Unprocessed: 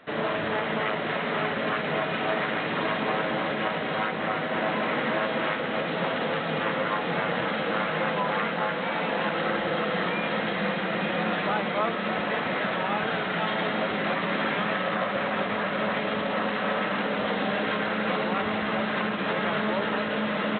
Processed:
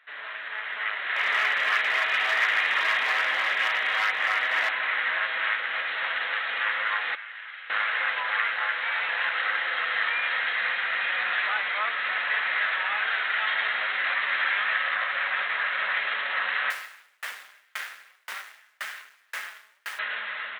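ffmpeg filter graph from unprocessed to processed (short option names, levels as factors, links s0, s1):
-filter_complex "[0:a]asettb=1/sr,asplit=3[s0][s1][s2];[s0]atrim=end=1.164[s3];[s1]atrim=start=1.16:end=4.69,asetpts=PTS-STARTPTS,afade=t=in:d=0.004:c=qsin,afade=t=out:st=3.526:d=0.004:c=qsin,equalizer=f=1500:t=o:w=0.24:g=-4.5,acontrast=23,volume=7.94,asoftclip=hard,volume=0.126[s4];[s2]atrim=start=4.686[s5];[s3][s4]acrossfade=d=0.004:c1=hsin:c2=qsin[s6];[s6][s5]acrossfade=d=0.004:c1=qsin:c2=hsin,asettb=1/sr,asplit=3[s7][s8][s9];[s7]atrim=end=7.154[s10];[s8]atrim=start=7.15:end=7.7,asetpts=PTS-STARTPTS,afade=t=in:d=0.004:c=qsin,afade=t=out:st=0.546:d=0.004:c=qsin,highpass=220,lowpass=2400,aderivative[s11];[s9]atrim=start=7.696[s12];[s10][s11]acrossfade=d=0.004:c1=hsin:c2=qsin[s13];[s13][s12]acrossfade=d=0.004:c1=qsin:c2=hsin,asettb=1/sr,asplit=3[s14][s15][s16];[s14]atrim=end=16.704[s17];[s15]atrim=start=16.7:end=19.99,asetpts=PTS-STARTPTS,afade=t=in:d=0.004:c=qsin,afade=t=out:st=3.286:d=0.004:c=qsin,acrusher=bits=3:dc=4:mix=0:aa=0.000001,aeval=exprs='val(0)*pow(10,-40*if(lt(mod(1.9*n/s,1),2*abs(1.9)/1000),1-mod(1.9*n/s,1)/(2*abs(1.9)/1000),(mod(1.9*n/s,1)-2*abs(1.9)/1000)/(1-2*abs(1.9)/1000))/20)':c=same[s18];[s16]atrim=start=19.986[s19];[s17][s18]acrossfade=d=0.004:c1=hsin:c2=qsin[s20];[s20][s19]acrossfade=d=0.004:c1=qsin:c2=hsin,highpass=1400,equalizer=f=1800:t=o:w=0.88:g=8,dynaudnorm=f=250:g=7:m=2.82,volume=0.398"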